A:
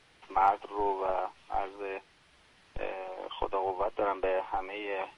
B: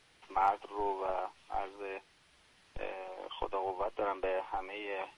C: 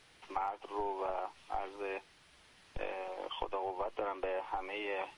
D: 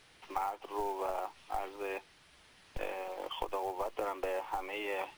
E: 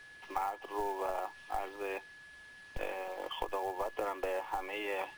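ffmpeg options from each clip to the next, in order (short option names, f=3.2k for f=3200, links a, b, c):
-af "highshelf=f=4.2k:g=6,volume=-4.5dB"
-af "acompressor=threshold=-35dB:ratio=12,volume=2.5dB"
-af "acrusher=bits=5:mode=log:mix=0:aa=0.000001,volume=1dB"
-af "aeval=exprs='val(0)+0.00251*sin(2*PI*1700*n/s)':c=same"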